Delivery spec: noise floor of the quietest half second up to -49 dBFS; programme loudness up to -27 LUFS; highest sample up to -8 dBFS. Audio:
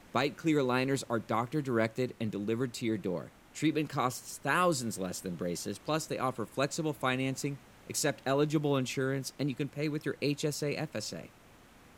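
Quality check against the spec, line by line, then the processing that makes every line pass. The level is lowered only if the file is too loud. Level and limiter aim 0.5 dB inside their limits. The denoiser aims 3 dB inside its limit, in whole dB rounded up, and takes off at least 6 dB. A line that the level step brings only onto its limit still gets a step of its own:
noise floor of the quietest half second -58 dBFS: OK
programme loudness -33.0 LUFS: OK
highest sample -15.0 dBFS: OK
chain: none

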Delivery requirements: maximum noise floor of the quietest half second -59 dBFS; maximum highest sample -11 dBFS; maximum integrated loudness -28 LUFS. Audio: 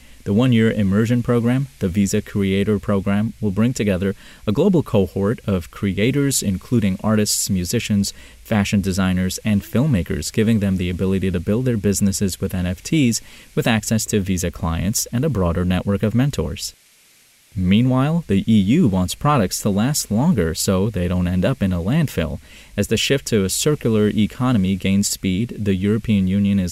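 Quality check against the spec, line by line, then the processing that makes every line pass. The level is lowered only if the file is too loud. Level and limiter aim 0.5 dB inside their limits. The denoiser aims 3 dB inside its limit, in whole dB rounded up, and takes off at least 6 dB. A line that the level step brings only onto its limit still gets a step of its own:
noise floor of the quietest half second -53 dBFS: fail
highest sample -5.5 dBFS: fail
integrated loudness -19.0 LUFS: fail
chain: gain -9.5 dB

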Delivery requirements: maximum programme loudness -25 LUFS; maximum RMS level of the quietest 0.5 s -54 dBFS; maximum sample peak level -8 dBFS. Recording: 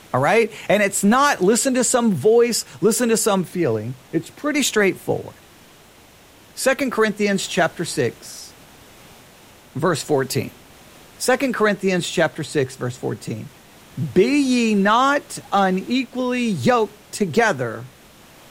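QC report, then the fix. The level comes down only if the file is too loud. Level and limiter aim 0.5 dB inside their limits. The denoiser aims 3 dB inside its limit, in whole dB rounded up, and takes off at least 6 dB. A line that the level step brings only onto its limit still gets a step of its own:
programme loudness -19.5 LUFS: fail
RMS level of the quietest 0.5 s -48 dBFS: fail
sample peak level -4.5 dBFS: fail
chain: denoiser 6 dB, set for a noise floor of -48 dBFS; gain -6 dB

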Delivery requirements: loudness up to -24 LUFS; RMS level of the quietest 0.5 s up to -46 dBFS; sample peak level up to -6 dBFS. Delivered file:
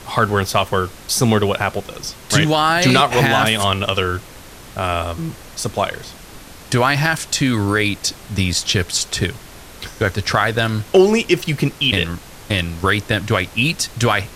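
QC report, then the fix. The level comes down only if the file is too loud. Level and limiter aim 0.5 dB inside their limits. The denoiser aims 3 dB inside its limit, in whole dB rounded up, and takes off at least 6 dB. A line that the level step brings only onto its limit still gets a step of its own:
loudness -17.5 LUFS: fail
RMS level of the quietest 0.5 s -38 dBFS: fail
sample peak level -2.0 dBFS: fail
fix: denoiser 6 dB, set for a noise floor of -38 dBFS; gain -7 dB

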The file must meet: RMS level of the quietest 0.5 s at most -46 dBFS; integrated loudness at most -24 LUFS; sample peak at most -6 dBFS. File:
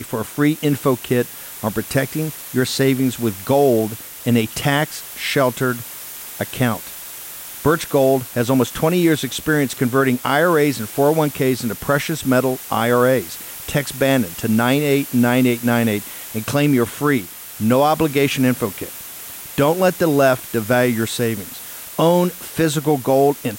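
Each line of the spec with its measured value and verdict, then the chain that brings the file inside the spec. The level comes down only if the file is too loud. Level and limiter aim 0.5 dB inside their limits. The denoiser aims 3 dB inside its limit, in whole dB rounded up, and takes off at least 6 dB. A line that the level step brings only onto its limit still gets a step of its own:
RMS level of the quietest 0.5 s -34 dBFS: fail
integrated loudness -18.5 LUFS: fail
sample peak -5.0 dBFS: fail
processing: denoiser 9 dB, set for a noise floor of -34 dBFS; gain -6 dB

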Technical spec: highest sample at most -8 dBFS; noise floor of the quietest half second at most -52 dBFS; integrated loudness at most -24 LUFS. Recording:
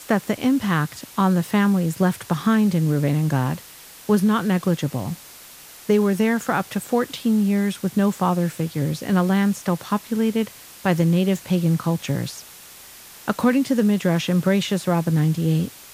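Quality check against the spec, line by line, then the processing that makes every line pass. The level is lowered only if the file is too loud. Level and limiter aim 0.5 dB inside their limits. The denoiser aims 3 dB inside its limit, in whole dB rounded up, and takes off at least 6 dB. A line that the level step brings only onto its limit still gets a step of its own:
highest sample -5.5 dBFS: fail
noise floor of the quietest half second -43 dBFS: fail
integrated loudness -21.5 LUFS: fail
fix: denoiser 9 dB, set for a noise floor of -43 dBFS; gain -3 dB

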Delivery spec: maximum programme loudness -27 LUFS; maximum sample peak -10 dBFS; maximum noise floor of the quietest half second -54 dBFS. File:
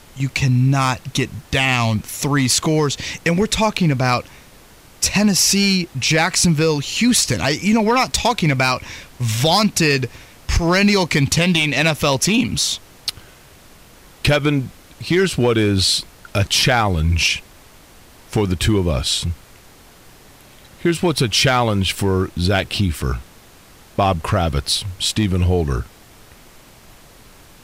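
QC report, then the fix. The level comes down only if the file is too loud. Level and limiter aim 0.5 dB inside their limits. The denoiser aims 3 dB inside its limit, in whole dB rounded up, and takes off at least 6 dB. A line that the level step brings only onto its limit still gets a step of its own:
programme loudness -17.5 LUFS: fail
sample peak -6.5 dBFS: fail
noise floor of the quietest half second -45 dBFS: fail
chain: gain -10 dB

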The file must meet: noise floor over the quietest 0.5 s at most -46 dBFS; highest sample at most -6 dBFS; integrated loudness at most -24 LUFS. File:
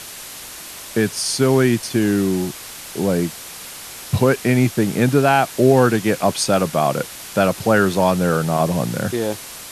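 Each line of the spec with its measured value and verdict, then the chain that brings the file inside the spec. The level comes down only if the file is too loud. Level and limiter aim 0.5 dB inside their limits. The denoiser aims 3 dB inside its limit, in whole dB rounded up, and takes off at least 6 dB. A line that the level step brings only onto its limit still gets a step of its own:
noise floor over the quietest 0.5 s -35 dBFS: fail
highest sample -2.0 dBFS: fail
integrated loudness -18.5 LUFS: fail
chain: denoiser 8 dB, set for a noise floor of -35 dBFS; gain -6 dB

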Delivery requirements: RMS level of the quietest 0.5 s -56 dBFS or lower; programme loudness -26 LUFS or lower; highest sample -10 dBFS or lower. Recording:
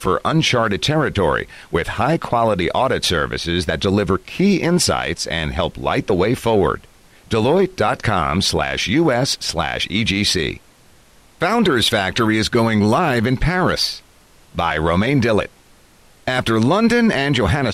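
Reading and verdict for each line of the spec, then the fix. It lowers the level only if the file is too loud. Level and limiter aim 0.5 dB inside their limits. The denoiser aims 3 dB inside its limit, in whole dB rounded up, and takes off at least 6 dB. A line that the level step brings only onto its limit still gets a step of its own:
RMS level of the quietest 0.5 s -50 dBFS: fail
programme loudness -17.5 LUFS: fail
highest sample -5.5 dBFS: fail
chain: gain -9 dB

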